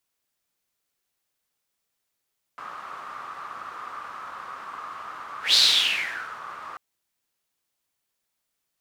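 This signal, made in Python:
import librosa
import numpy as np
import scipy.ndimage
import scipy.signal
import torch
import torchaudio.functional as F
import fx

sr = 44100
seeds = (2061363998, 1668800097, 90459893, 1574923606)

y = fx.whoosh(sr, seeds[0], length_s=4.19, peak_s=2.97, rise_s=0.15, fall_s=0.89, ends_hz=1200.0, peak_hz=4200.0, q=6.7, swell_db=21)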